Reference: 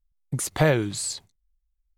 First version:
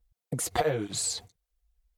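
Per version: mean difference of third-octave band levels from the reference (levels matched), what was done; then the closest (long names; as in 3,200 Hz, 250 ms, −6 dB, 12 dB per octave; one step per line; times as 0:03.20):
5.5 dB: downward compressor 12 to 1, threshold −33 dBFS, peak gain reduction 18 dB
hollow resonant body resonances 480/700 Hz, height 11 dB, ringing for 60 ms
through-zero flanger with one copy inverted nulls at 1.7 Hz, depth 7.7 ms
level +9 dB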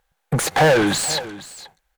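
8.5 dB: thirty-one-band graphic EQ 160 Hz +7 dB, 500 Hz +10 dB, 800 Hz +12 dB, 1,600 Hz +9 dB, 5,000 Hz −4 dB, 12,500 Hz +3 dB
mid-hump overdrive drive 33 dB, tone 3,200 Hz, clips at −8 dBFS
on a send: single-tap delay 477 ms −16.5 dB
on the sum: level −1.5 dB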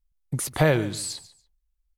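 2.5 dB: parametric band 12,000 Hz +2.5 dB 0.77 octaves
repeating echo 144 ms, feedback 18%, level −17 dB
dynamic equaliser 7,200 Hz, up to −6 dB, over −45 dBFS, Q 2.6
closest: third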